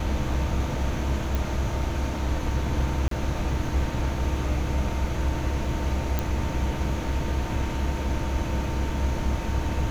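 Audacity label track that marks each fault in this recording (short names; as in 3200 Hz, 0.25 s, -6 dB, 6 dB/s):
1.350000	1.350000	pop
3.080000	3.110000	gap 33 ms
6.190000	6.190000	pop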